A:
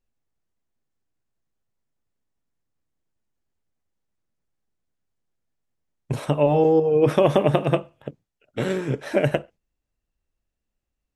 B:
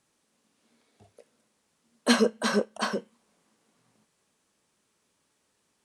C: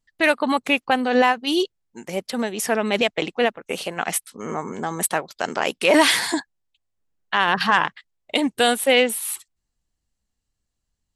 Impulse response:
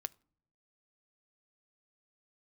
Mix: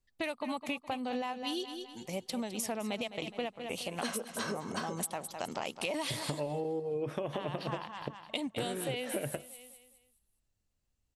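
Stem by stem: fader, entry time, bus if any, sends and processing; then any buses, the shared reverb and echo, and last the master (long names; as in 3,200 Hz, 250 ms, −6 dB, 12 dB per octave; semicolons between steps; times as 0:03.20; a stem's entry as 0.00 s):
−3.0 dB, 0.00 s, no send, no echo send, no processing
−5.0 dB, 1.95 s, no send, echo send −18 dB, low-shelf EQ 430 Hz −4 dB
−6.5 dB, 0.00 s, no send, echo send −12.5 dB, graphic EQ with 15 bands 100 Hz +8 dB, 400 Hz −6 dB, 1,600 Hz −11 dB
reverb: not used
echo: repeating echo 208 ms, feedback 36%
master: downward compressor 12 to 1, threshold −32 dBFS, peak gain reduction 17.5 dB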